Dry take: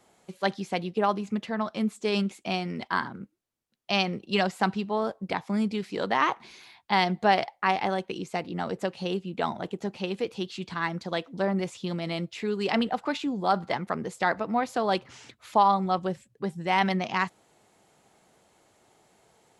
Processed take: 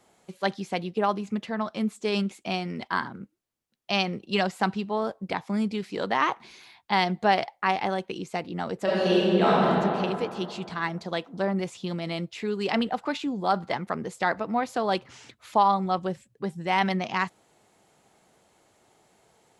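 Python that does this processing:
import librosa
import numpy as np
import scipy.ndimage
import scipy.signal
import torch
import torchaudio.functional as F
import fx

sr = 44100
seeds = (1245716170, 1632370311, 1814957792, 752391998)

y = fx.reverb_throw(x, sr, start_s=8.83, length_s=0.83, rt60_s=2.6, drr_db=-9.0)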